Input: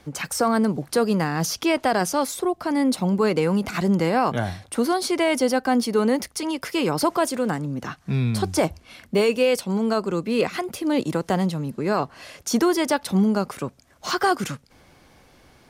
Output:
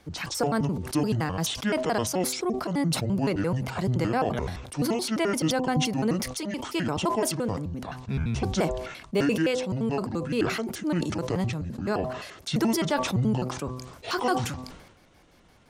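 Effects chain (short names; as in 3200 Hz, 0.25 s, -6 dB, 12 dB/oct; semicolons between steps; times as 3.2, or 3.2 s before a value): trilling pitch shifter -8 st, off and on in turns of 86 ms; de-hum 127.2 Hz, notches 9; sustainer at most 58 dB/s; gain -4.5 dB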